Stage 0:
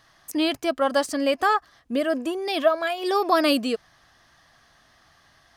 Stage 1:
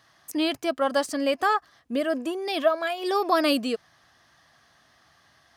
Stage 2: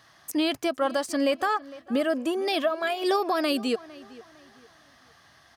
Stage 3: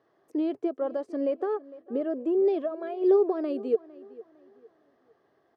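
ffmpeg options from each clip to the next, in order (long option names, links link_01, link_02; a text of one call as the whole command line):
ffmpeg -i in.wav -af "highpass=76,volume=-2dB" out.wav
ffmpeg -i in.wav -filter_complex "[0:a]alimiter=limit=-19.5dB:level=0:latency=1:release=279,asplit=2[link_01][link_02];[link_02]adelay=456,lowpass=frequency=3000:poles=1,volume=-19.5dB,asplit=2[link_03][link_04];[link_04]adelay=456,lowpass=frequency=3000:poles=1,volume=0.34,asplit=2[link_05][link_06];[link_06]adelay=456,lowpass=frequency=3000:poles=1,volume=0.34[link_07];[link_01][link_03][link_05][link_07]amix=inputs=4:normalize=0,volume=3.5dB" out.wav
ffmpeg -i in.wav -af "bandpass=frequency=410:width_type=q:width=5:csg=0,volume=7.5dB" out.wav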